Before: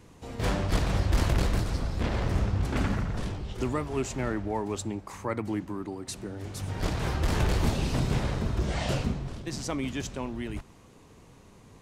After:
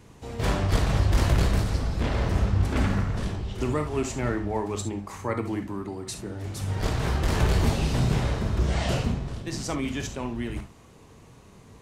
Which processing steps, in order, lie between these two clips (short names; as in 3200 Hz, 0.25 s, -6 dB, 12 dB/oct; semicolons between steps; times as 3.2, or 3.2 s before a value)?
non-linear reverb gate 90 ms flat, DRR 5.5 dB; gain +1.5 dB